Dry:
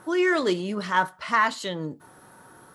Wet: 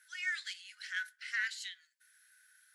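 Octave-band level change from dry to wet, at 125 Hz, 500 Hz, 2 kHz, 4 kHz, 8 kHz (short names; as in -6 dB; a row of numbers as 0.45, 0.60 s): under -40 dB, under -40 dB, -9.0 dB, -8.5 dB, -7.0 dB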